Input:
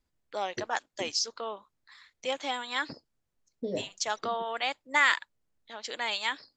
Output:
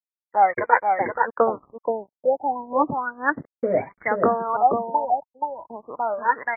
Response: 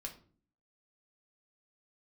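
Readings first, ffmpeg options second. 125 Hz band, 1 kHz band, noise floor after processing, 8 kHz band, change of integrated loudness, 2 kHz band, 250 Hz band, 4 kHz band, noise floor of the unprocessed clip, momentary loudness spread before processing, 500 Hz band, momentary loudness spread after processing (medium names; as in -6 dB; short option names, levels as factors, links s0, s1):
+11.0 dB, +14.0 dB, under -85 dBFS, under -40 dB, +8.0 dB, +2.5 dB, +12.0 dB, under -40 dB, -80 dBFS, 15 LU, +13.5 dB, 9 LU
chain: -af "aphaser=in_gain=1:out_gain=1:delay=2.2:decay=0.73:speed=0.71:type=triangular,aeval=exprs='sgn(val(0))*max(abs(val(0))-0.00237,0)':c=same,dynaudnorm=f=210:g=3:m=3.55,agate=range=0.0224:threshold=0.0158:ratio=3:detection=peak,highpass=f=150:p=1,aecho=1:1:478:0.596,afftfilt=real='re*lt(b*sr/1024,910*pow(2400/910,0.5+0.5*sin(2*PI*0.33*pts/sr)))':imag='im*lt(b*sr/1024,910*pow(2400/910,0.5+0.5*sin(2*PI*0.33*pts/sr)))':win_size=1024:overlap=0.75,volume=1.19"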